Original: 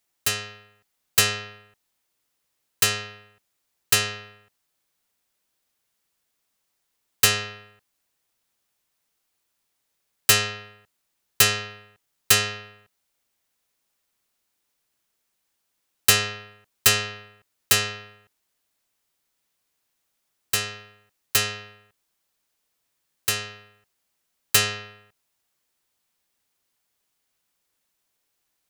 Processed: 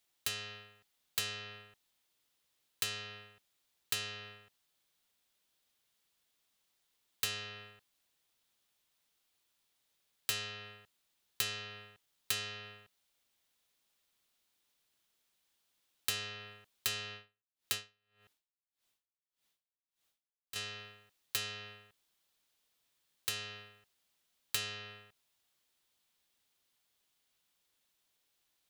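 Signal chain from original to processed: bell 3500 Hz +6 dB 0.77 oct; compressor 4:1, threshold -32 dBFS, peak gain reduction 18.5 dB; 17.12–20.56 dB-linear tremolo 1.7 Hz, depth 37 dB; gain -4 dB

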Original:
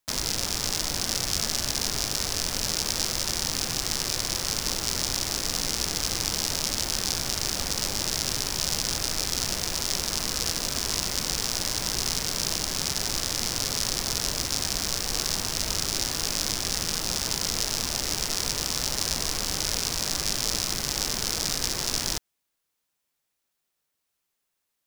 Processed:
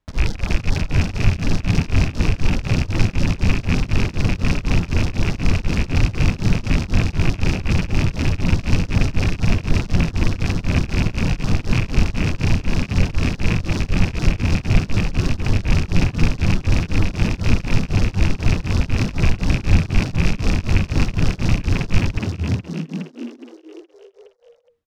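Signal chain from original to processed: rattling part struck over -35 dBFS, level -12 dBFS; RIAA curve playback; reverb removal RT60 0.67 s; high shelf 4800 Hz -8 dB; frequency-shifting echo 0.417 s, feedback 48%, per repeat +78 Hz, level -5 dB; beating tremolo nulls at 4 Hz; gain +6 dB

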